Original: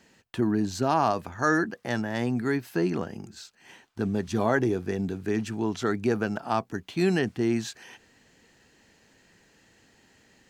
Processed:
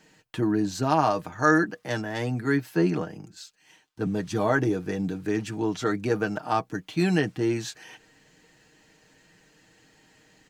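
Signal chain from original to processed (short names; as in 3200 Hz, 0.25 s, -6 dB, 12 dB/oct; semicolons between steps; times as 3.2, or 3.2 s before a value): comb 6.5 ms, depth 60%; 1.84–4.07 three-band expander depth 40%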